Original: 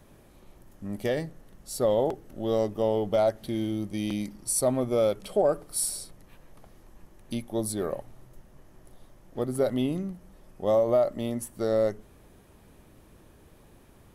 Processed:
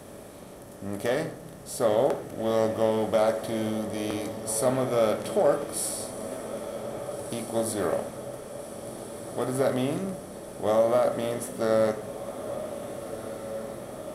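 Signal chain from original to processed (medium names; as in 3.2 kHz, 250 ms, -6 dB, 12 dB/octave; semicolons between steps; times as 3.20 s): spectral levelling over time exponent 0.6; on a send at -6.5 dB: reverberation RT60 0.55 s, pre-delay 7 ms; on the sum: dynamic bell 1.5 kHz, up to +7 dB, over -37 dBFS, Q 0.72; high-pass 44 Hz; echo that smears into a reverb 1651 ms, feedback 63%, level -11.5 dB; trim -5 dB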